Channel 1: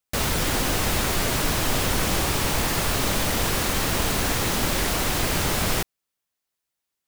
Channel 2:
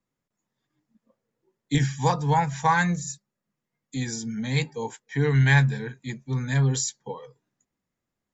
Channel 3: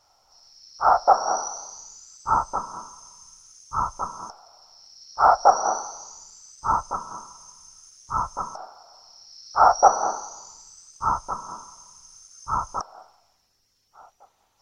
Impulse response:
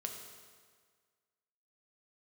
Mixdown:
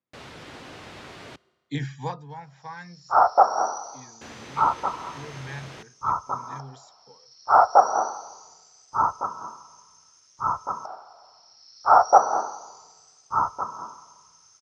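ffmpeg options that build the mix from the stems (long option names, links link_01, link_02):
-filter_complex "[0:a]volume=-17dB,asplit=3[link_01][link_02][link_03];[link_01]atrim=end=1.36,asetpts=PTS-STARTPTS,afade=type=out:start_time=1.356:duration=0.004:curve=hsin[link_04];[link_02]atrim=start=1.36:end=4.21,asetpts=PTS-STARTPTS,volume=0[link_05];[link_03]atrim=start=4.21,asetpts=PTS-STARTPTS,afade=type=in:duration=0.004:curve=hsin[link_06];[link_04][link_05][link_06]concat=n=3:v=0:a=1,asplit=2[link_07][link_08];[link_08]volume=-16.5dB[link_09];[1:a]volume=-5.5dB,afade=type=out:start_time=1.97:duration=0.32:silence=0.237137[link_10];[2:a]adelay=2300,volume=-0.5dB,asplit=2[link_11][link_12];[link_12]volume=-17dB[link_13];[3:a]atrim=start_sample=2205[link_14];[link_09][link_13]amix=inputs=2:normalize=0[link_15];[link_15][link_14]afir=irnorm=-1:irlink=0[link_16];[link_07][link_10][link_11][link_16]amix=inputs=4:normalize=0,highpass=120,lowpass=4100,equalizer=frequency=200:width_type=o:width=0.26:gain=-6"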